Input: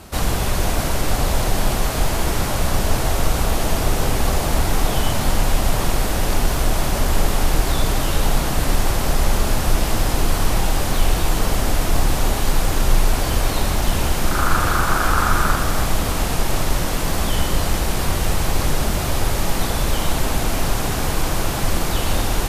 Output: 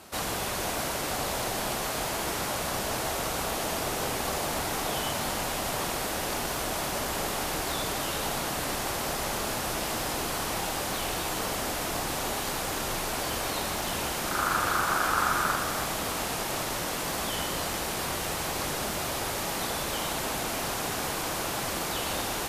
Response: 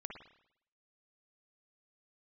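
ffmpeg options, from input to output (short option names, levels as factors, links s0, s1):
-af "highpass=f=370:p=1,volume=0.531"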